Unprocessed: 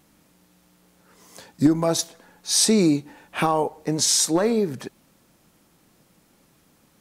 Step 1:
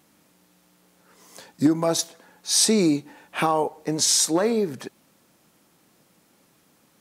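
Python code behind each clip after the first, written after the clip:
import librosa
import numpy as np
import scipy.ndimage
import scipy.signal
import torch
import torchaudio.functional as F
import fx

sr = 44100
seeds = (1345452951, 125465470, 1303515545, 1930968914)

y = fx.highpass(x, sr, hz=180.0, slope=6)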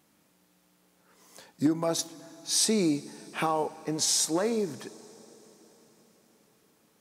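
y = fx.rev_plate(x, sr, seeds[0], rt60_s=5.0, hf_ratio=0.9, predelay_ms=0, drr_db=18.0)
y = y * librosa.db_to_amplitude(-6.0)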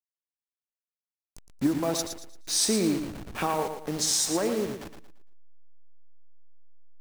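y = fx.delta_hold(x, sr, step_db=-34.0)
y = fx.echo_feedback(y, sr, ms=114, feedback_pct=32, wet_db=-8)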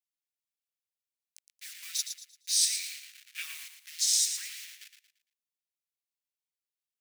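y = scipy.signal.sosfilt(scipy.signal.butter(6, 2000.0, 'highpass', fs=sr, output='sos'), x)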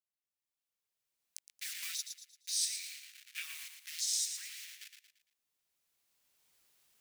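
y = fx.recorder_agc(x, sr, target_db=-22.0, rise_db_per_s=13.0, max_gain_db=30)
y = y * librosa.db_to_amplitude(-8.0)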